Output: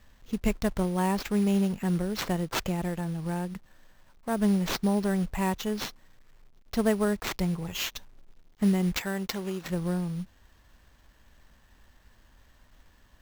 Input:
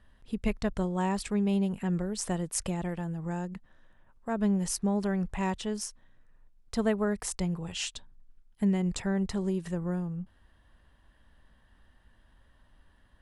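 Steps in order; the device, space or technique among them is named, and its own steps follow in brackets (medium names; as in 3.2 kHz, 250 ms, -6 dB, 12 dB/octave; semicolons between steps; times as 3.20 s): 8.97–9.70 s: tilt EQ +3 dB/octave; early companding sampler (sample-rate reducer 9.7 kHz, jitter 0%; companded quantiser 6-bit); trim +2.5 dB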